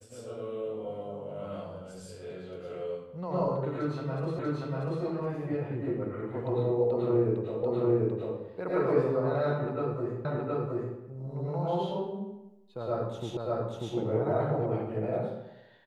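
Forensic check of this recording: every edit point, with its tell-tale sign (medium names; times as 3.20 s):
4.39 s: repeat of the last 0.64 s
7.63 s: repeat of the last 0.74 s
10.25 s: repeat of the last 0.72 s
13.37 s: repeat of the last 0.59 s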